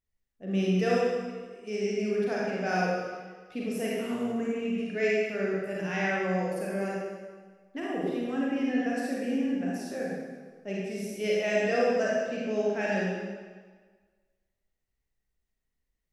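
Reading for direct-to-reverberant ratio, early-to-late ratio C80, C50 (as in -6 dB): -5.5 dB, 0.0 dB, -2.5 dB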